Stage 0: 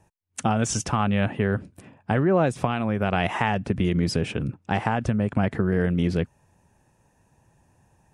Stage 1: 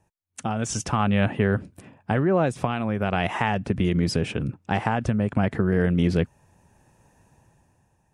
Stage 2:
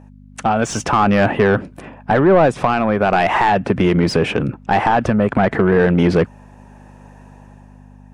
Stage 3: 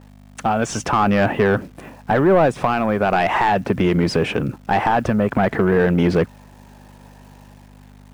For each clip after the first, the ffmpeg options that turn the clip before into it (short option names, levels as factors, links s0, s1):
-af "dynaudnorm=f=160:g=11:m=4.73,volume=0.501"
-filter_complex "[0:a]aeval=exprs='val(0)+0.00562*(sin(2*PI*50*n/s)+sin(2*PI*2*50*n/s)/2+sin(2*PI*3*50*n/s)/3+sin(2*PI*4*50*n/s)/4+sin(2*PI*5*50*n/s)/5)':c=same,asplit=2[s0][s1];[s1]highpass=f=720:p=1,volume=10,asoftclip=type=tanh:threshold=0.473[s2];[s0][s2]amix=inputs=2:normalize=0,lowpass=f=1200:p=1,volume=0.501,volume=1.78"
-af "acrusher=bits=9:dc=4:mix=0:aa=0.000001,volume=0.75"